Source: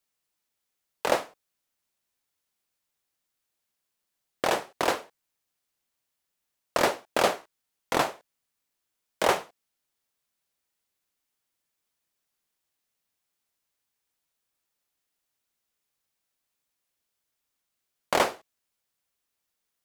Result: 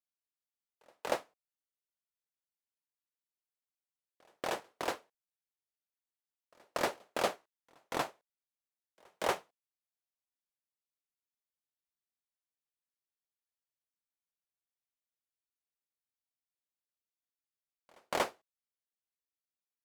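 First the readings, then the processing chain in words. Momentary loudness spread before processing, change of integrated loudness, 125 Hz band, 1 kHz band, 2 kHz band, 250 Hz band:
7 LU, -9.5 dB, -9.5 dB, -9.5 dB, -9.5 dB, -9.5 dB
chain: pre-echo 236 ms -21 dB; upward expansion 1.5:1, over -43 dBFS; trim -7.5 dB

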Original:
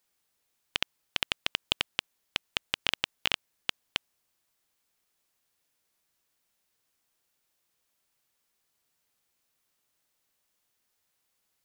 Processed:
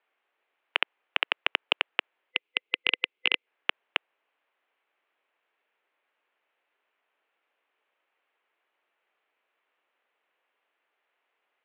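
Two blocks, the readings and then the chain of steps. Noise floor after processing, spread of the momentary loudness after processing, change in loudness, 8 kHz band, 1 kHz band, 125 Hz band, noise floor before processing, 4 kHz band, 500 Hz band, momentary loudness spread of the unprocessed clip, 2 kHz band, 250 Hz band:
-81 dBFS, 6 LU, +3.5 dB, under -30 dB, +5.0 dB, under -15 dB, -78 dBFS, +1.5 dB, +5.0 dB, 7 LU, +6.5 dB, -2.0 dB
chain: time-frequency box 2.31–3.46 s, 570–2100 Hz -10 dB; mistuned SSB -61 Hz 450–2900 Hz; trim +7.5 dB

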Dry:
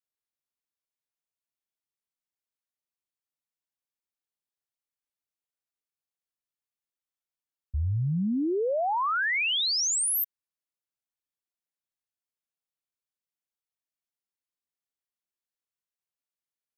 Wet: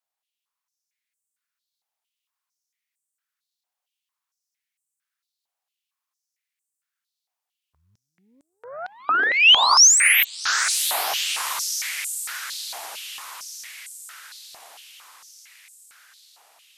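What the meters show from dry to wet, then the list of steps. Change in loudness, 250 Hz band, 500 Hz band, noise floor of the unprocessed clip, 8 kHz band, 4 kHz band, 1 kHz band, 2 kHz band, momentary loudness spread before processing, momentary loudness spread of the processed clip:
+9.0 dB, -17.5 dB, -5.5 dB, under -85 dBFS, +13.0 dB, +12.5 dB, +7.5 dB, +11.5 dB, 8 LU, 24 LU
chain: echo that smears into a reverb 760 ms, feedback 58%, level -4 dB; Chebyshev shaper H 4 -24 dB, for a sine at -12.5 dBFS; step-sequenced high-pass 4.4 Hz 750–8000 Hz; trim +4.5 dB

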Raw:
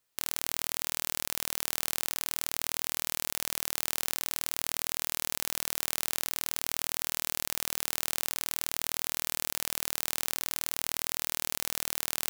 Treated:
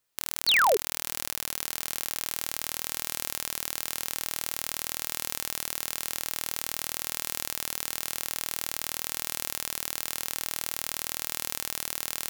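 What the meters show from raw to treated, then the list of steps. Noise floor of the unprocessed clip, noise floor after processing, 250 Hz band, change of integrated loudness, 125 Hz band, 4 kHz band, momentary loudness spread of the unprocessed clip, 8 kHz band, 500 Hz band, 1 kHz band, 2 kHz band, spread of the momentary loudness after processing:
-78 dBFS, -51 dBFS, +0.5 dB, +1.5 dB, 0.0 dB, +3.0 dB, 0 LU, 0.0 dB, +9.5 dB, +7.5 dB, +5.0 dB, 3 LU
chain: thinning echo 434 ms, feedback 78%, high-pass 640 Hz, level -19 dB; painted sound fall, 0.47–0.77 s, 370–4800 Hz -21 dBFS

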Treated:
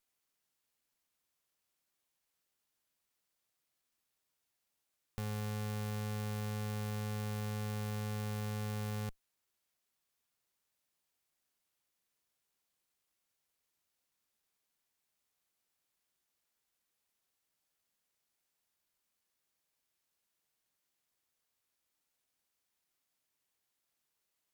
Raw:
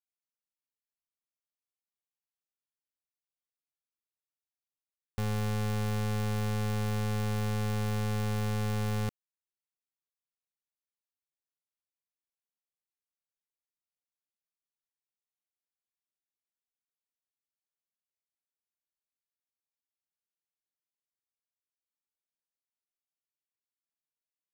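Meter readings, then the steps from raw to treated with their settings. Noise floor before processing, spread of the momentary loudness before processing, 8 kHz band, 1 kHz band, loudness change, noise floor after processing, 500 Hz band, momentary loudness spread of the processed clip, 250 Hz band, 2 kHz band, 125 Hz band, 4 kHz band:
under -85 dBFS, 2 LU, -5.0 dB, -7.5 dB, -7.5 dB, -85 dBFS, -7.5 dB, 2 LU, -7.5 dB, -7.0 dB, -7.5 dB, -6.5 dB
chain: half-wave rectifier; valve stage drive 43 dB, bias 0.6; trim +18 dB

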